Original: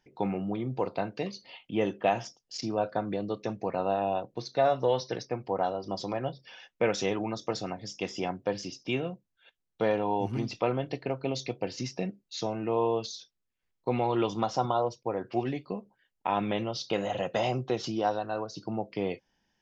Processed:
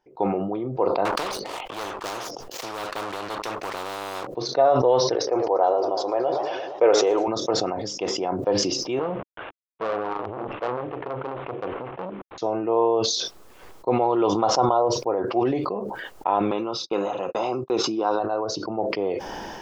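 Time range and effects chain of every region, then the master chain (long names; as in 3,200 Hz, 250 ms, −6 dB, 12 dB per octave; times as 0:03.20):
0:01.05–0:04.27: high-shelf EQ 3,500 Hz −11 dB + leveller curve on the samples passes 2 + every bin compressed towards the loudest bin 10 to 1
0:05.15–0:07.28: low shelf with overshoot 290 Hz −9.5 dB, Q 1.5 + feedback echo with a swinging delay time 116 ms, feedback 74%, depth 188 cents, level −17 dB
0:08.99–0:12.38: variable-slope delta modulation 16 kbit/s + saturating transformer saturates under 2,000 Hz
0:16.51–0:18.20: high-pass filter 200 Hz + noise gate −41 dBFS, range −53 dB + comb filter 0.8 ms, depth 54%
whole clip: flat-topped bell 640 Hz +11.5 dB 2.4 octaves; level that may fall only so fast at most 28 dB per second; level −5 dB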